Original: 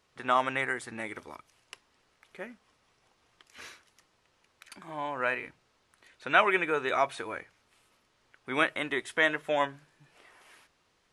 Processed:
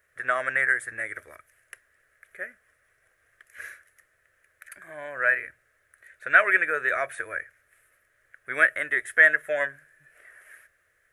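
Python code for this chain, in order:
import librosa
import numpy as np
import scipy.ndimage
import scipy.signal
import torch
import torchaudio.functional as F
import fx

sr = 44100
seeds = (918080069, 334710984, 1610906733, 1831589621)

y = fx.curve_eq(x, sr, hz=(100.0, 220.0, 620.0, 880.0, 1700.0, 2800.0, 4600.0, 11000.0), db=(0, -15, 3, -17, 14, -7, -13, 10))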